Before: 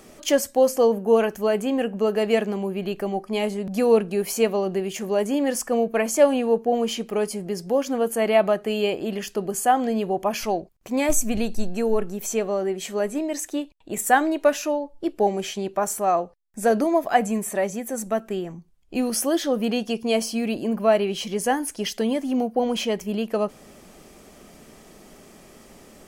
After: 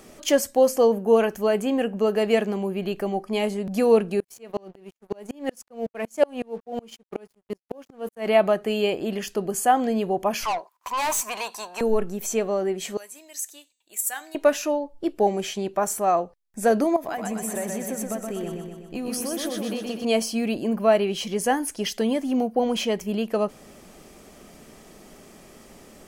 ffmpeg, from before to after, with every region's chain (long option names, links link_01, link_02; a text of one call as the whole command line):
ffmpeg -i in.wav -filter_complex "[0:a]asettb=1/sr,asplit=3[link_01][link_02][link_03];[link_01]atrim=end=4.204[link_04];[link_02]atrim=start=4.2:end=8.27,asetpts=PTS-STARTPTS,afade=type=in:duration=0.004:curve=qsin,afade=type=out:start_time=4.066:duration=0.004:curve=qsin,agate=range=-17dB:threshold=-29dB:ratio=16:release=100:detection=peak,aeval=exprs='sgn(val(0))*max(abs(val(0))-0.00562,0)':channel_layout=same,aeval=exprs='val(0)*pow(10,-33*if(lt(mod(-5.4*n/s,1),2*abs(-5.4)/1000),1-mod(-5.4*n/s,1)/(2*abs(-5.4)/1000),(mod(-5.4*n/s,1)-2*abs(-5.4)/1000)/(1-2*abs(-5.4)/1000))/20)':channel_layout=same[link_05];[link_03]atrim=start=8.266[link_06];[link_04][link_05]acrossfade=duration=0.004:curve1=hsin:curve2=qsin[link_07];[link_07][link_06]acrossfade=duration=0.004:curve1=qsin:curve2=hsin,asettb=1/sr,asplit=3[link_08][link_09][link_10];[link_08]atrim=end=10.454[link_11];[link_09]atrim=start=10.45:end=11.81,asetpts=PTS-STARTPTS,afade=type=in:duration=0.004:curve=qsin,afade=type=out:start_time=1.356:duration=0.004:curve=qsin,highpass=frequency=1000:width_type=q:width=12,acontrast=26,aeval=exprs='(tanh(12.6*val(0)+0.15)-tanh(0.15))/12.6':channel_layout=same[link_12];[link_10]atrim=start=11.806[link_13];[link_11][link_12]acrossfade=duration=0.004:curve1=hsin:curve2=qsin[link_14];[link_14][link_13]acrossfade=duration=0.004:curve1=qsin:curve2=hsin,asettb=1/sr,asplit=3[link_15][link_16][link_17];[link_15]atrim=end=12.974[link_18];[link_16]atrim=start=12.97:end=14.35,asetpts=PTS-STARTPTS,afade=type=in:duration=0.004:curve=qsin,afade=type=out:start_time=1.376:duration=0.004:curve=qsin,aderivative,bandreject=frequency=254.7:width_type=h:width=4,bandreject=frequency=509.4:width_type=h:width=4,bandreject=frequency=764.1:width_type=h:width=4,bandreject=frequency=1018.8:width_type=h:width=4,bandreject=frequency=1273.5:width_type=h:width=4,bandreject=frequency=1528.2:width_type=h:width=4,bandreject=frequency=1782.9:width_type=h:width=4,bandreject=frequency=2037.6:width_type=h:width=4,bandreject=frequency=2292.3:width_type=h:width=4,bandreject=frequency=2547:width_type=h:width=4,bandreject=frequency=2801.7:width_type=h:width=4,bandreject=frequency=3056.4:width_type=h:width=4,bandreject=frequency=3311.1:width_type=h:width=4,bandreject=frequency=3565.8:width_type=h:width=4,bandreject=frequency=3820.5:width_type=h:width=4,bandreject=frequency=4075.2:width_type=h:width=4,bandreject=frequency=4329.9:width_type=h:width=4,bandreject=frequency=4584.6:width_type=h:width=4,bandreject=frequency=4839.3:width_type=h:width=4,bandreject=frequency=5094:width_type=h:width=4,bandreject=frequency=5348.7:width_type=h:width=4,bandreject=frequency=5603.4:width_type=h:width=4,bandreject=frequency=5858.1:width_type=h:width=4,bandreject=frequency=6112.8:width_type=h:width=4,bandreject=frequency=6367.5:width_type=h:width=4,bandreject=frequency=6622.2:width_type=h:width=4,bandreject=frequency=6876.9:width_type=h:width=4,bandreject=frequency=7131.6:width_type=h:width=4,bandreject=frequency=7386.3:width_type=h:width=4,bandreject=frequency=7641:width_type=h:width=4,bandreject=frequency=7895.7:width_type=h:width=4,bandreject=frequency=8150.4:width_type=h:width=4[link_19];[link_17]atrim=start=14.346[link_20];[link_18][link_19]acrossfade=duration=0.004:curve1=hsin:curve2=qsin[link_21];[link_21][link_20]acrossfade=duration=0.004:curve1=qsin:curve2=hsin,asettb=1/sr,asplit=3[link_22][link_23][link_24];[link_22]atrim=end=16.964[link_25];[link_23]atrim=start=16.96:end=20.05,asetpts=PTS-STARTPTS,afade=type=in:duration=0.004:curve=qsin,afade=type=out:start_time=3.086:duration=0.004:curve=qsin,acompressor=threshold=-26dB:ratio=12:attack=3.2:release=140:knee=1:detection=peak,aecho=1:1:124|248|372|496|620|744|868|992:0.631|0.372|0.22|0.13|0.0765|0.0451|0.0266|0.0157,atrim=end_sample=136269[link_26];[link_24]atrim=start=20.046[link_27];[link_25][link_26]acrossfade=duration=0.004:curve1=hsin:curve2=qsin[link_28];[link_28][link_27]acrossfade=duration=0.004:curve1=qsin:curve2=hsin" out.wav